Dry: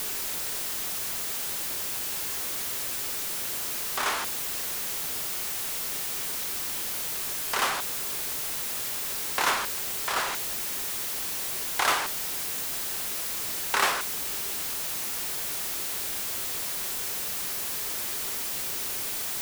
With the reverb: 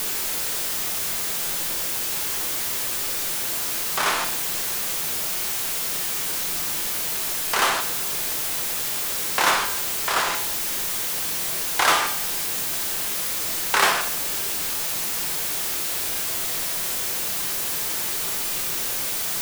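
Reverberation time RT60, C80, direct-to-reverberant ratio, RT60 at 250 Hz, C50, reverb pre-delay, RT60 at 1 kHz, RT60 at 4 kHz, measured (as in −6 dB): 0.70 s, 13.0 dB, 6.5 dB, 0.70 s, 10.5 dB, 6 ms, 0.70 s, 0.65 s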